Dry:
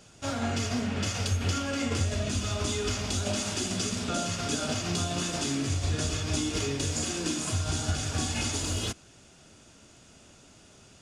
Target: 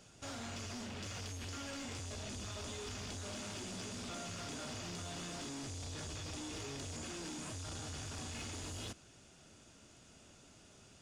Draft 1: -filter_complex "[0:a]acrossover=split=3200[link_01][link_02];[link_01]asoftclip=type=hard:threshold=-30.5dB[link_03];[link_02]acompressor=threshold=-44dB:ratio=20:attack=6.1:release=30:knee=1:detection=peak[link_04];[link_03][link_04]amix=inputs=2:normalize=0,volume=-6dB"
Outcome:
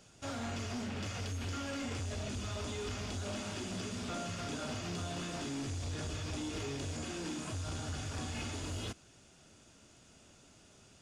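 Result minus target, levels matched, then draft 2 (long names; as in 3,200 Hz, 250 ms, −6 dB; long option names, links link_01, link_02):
hard clipping: distortion −5 dB
-filter_complex "[0:a]acrossover=split=3200[link_01][link_02];[link_01]asoftclip=type=hard:threshold=-38.5dB[link_03];[link_02]acompressor=threshold=-44dB:ratio=20:attack=6.1:release=30:knee=1:detection=peak[link_04];[link_03][link_04]amix=inputs=2:normalize=0,volume=-6dB"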